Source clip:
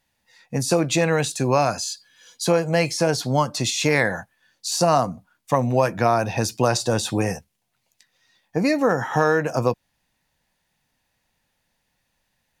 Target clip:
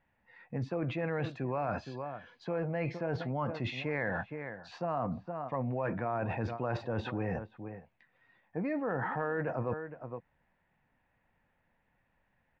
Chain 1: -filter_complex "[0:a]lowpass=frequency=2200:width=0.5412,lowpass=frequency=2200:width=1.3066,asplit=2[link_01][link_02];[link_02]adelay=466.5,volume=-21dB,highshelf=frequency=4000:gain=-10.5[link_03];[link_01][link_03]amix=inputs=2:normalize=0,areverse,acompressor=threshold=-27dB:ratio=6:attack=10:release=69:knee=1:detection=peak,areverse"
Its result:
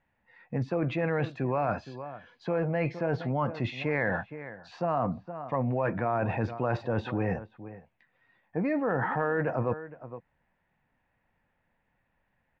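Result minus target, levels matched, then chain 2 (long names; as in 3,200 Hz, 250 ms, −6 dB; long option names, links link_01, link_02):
downward compressor: peak gain reduction −5.5 dB
-filter_complex "[0:a]lowpass=frequency=2200:width=0.5412,lowpass=frequency=2200:width=1.3066,asplit=2[link_01][link_02];[link_02]adelay=466.5,volume=-21dB,highshelf=frequency=4000:gain=-10.5[link_03];[link_01][link_03]amix=inputs=2:normalize=0,areverse,acompressor=threshold=-33.5dB:ratio=6:attack=10:release=69:knee=1:detection=peak,areverse"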